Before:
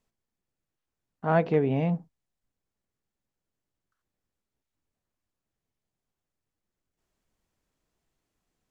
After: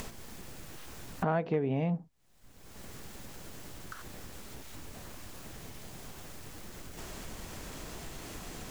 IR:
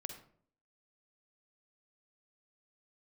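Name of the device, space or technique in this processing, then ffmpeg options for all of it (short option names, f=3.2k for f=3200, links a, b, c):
upward and downward compression: -af "acompressor=mode=upward:threshold=-32dB:ratio=2.5,acompressor=threshold=-41dB:ratio=4,volume=11dB"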